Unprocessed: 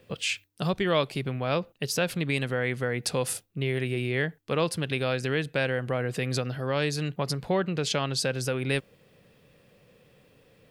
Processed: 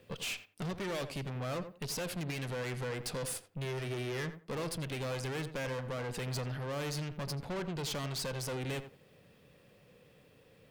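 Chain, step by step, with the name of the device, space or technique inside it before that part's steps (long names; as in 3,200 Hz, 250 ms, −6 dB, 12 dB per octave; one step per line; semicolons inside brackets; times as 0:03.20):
rockabilly slapback (tube saturation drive 35 dB, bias 0.6; tape delay 86 ms, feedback 22%, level −9 dB, low-pass 1,700 Hz)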